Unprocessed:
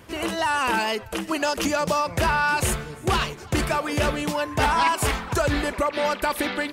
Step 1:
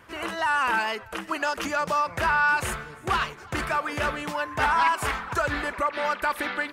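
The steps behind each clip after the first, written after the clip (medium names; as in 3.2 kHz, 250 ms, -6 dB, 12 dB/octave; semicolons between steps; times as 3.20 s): peaking EQ 1.4 kHz +11 dB 1.7 oct; trim -9 dB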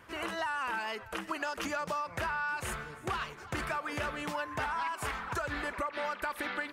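compression, threshold -28 dBFS, peak gain reduction 10.5 dB; trim -3.5 dB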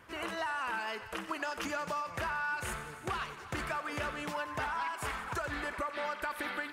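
thinning echo 90 ms, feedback 76%, high-pass 420 Hz, level -13.5 dB; trim -1.5 dB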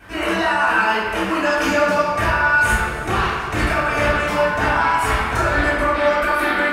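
reverberation RT60 1.3 s, pre-delay 3 ms, DRR -13 dB; trim +4 dB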